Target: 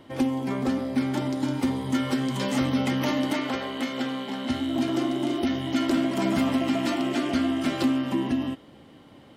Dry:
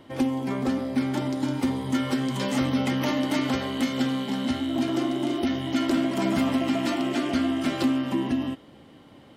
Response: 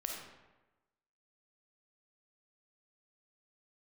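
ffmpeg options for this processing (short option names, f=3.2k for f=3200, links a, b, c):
-filter_complex "[0:a]asettb=1/sr,asplit=3[a][b][c];[a]atrim=end=3.334[d];[b]atrim=start=3.33:end=4.5,asetpts=PTS-STARTPTS,afade=t=in:d=0.004:c=qsin,afade=t=out:st=1.166:d=0.004:c=qsin,bass=f=250:g=-10,treble=f=4k:g=-6[e];[c]atrim=start=4.496[f];[d][e]acrossfade=d=0.004:c1=hsin:c2=qsin[g];[g][f]acrossfade=d=0.004:c1=qsin:c2=hsin"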